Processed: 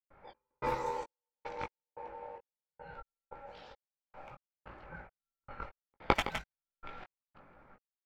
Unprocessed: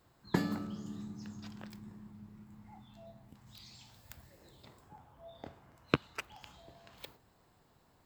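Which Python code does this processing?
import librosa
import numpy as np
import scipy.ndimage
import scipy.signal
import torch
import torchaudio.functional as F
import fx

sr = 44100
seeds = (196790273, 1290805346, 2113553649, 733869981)

p1 = fx.graphic_eq_15(x, sr, hz=(160, 630, 1600), db=(5, 10, 10))
p2 = p1 + fx.echo_feedback(p1, sr, ms=163, feedback_pct=23, wet_db=-6.0, dry=0)
p3 = fx.step_gate(p2, sr, bpm=145, pattern='.xx...xxxx...', floor_db=-60.0, edge_ms=4.5)
p4 = p3 * np.sin(2.0 * np.pi * 690.0 * np.arange(len(p3)) / sr)
p5 = fx.chorus_voices(p4, sr, voices=6, hz=0.58, base_ms=19, depth_ms=3.1, mix_pct=35)
p6 = fx.env_lowpass(p5, sr, base_hz=1400.0, full_db=-40.5)
y = p6 * 10.0 ** (9.0 / 20.0)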